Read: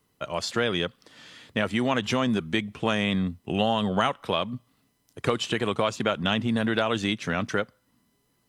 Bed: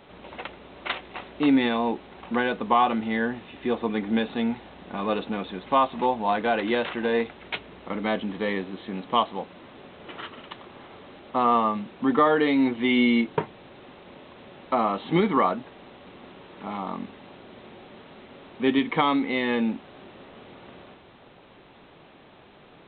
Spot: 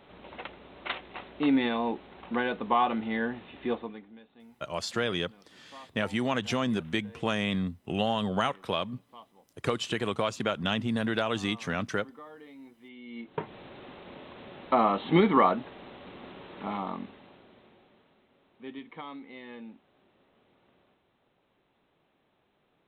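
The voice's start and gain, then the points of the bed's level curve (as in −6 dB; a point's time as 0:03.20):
4.40 s, −4.0 dB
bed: 0:03.73 −4.5 dB
0:04.16 −28 dB
0:13.02 −28 dB
0:13.54 0 dB
0:16.66 0 dB
0:18.26 −20 dB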